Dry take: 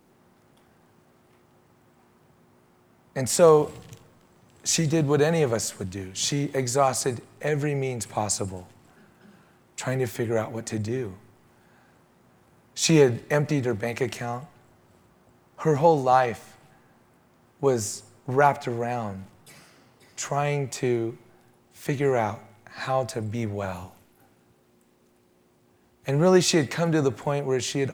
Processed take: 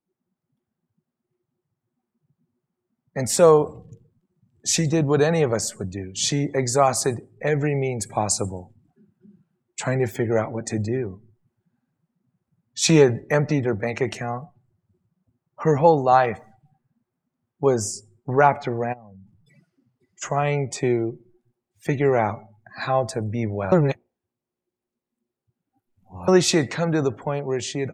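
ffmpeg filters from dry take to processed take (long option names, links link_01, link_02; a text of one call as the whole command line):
ffmpeg -i in.wav -filter_complex "[0:a]asplit=3[link_01][link_02][link_03];[link_01]afade=type=out:start_time=18.92:duration=0.02[link_04];[link_02]acompressor=threshold=-45dB:ratio=6:attack=3.2:release=140:knee=1:detection=peak,afade=type=in:start_time=18.92:duration=0.02,afade=type=out:start_time=20.21:duration=0.02[link_05];[link_03]afade=type=in:start_time=20.21:duration=0.02[link_06];[link_04][link_05][link_06]amix=inputs=3:normalize=0,asplit=3[link_07][link_08][link_09];[link_07]atrim=end=23.722[link_10];[link_08]atrim=start=23.718:end=26.282,asetpts=PTS-STARTPTS,areverse[link_11];[link_09]atrim=start=26.278[link_12];[link_10][link_11]acrossfade=duration=0.004:curve1=hsin:curve2=hsin[link_13];[link_13][link_12]acrossfade=duration=0.004:curve1=hsin:curve2=hsin,afftdn=noise_reduction=29:noise_floor=-43,dynaudnorm=framelen=800:gausssize=5:maxgain=4dB" out.wav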